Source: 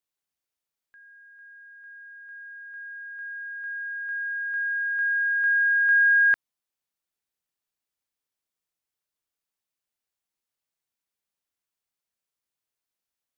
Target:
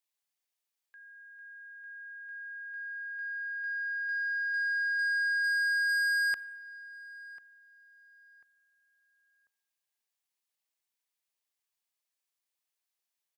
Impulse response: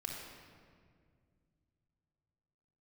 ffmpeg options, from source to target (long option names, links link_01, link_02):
-filter_complex "[0:a]highpass=frequency=870:poles=1,equalizer=frequency=1400:width_type=o:width=0.22:gain=-6.5,asoftclip=type=tanh:threshold=-29dB,asplit=2[link_01][link_02];[link_02]adelay=1043,lowpass=frequency=1700:poles=1,volume=-16.5dB,asplit=2[link_03][link_04];[link_04]adelay=1043,lowpass=frequency=1700:poles=1,volume=0.33,asplit=2[link_05][link_06];[link_06]adelay=1043,lowpass=frequency=1700:poles=1,volume=0.33[link_07];[link_01][link_03][link_05][link_07]amix=inputs=4:normalize=0,asplit=2[link_08][link_09];[1:a]atrim=start_sample=2205[link_10];[link_09][link_10]afir=irnorm=-1:irlink=0,volume=-13.5dB[link_11];[link_08][link_11]amix=inputs=2:normalize=0"